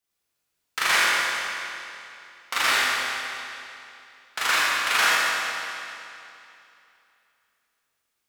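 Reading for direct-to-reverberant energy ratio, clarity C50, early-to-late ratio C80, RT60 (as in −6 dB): −9.0 dB, −4.5 dB, −3.0 dB, 2.8 s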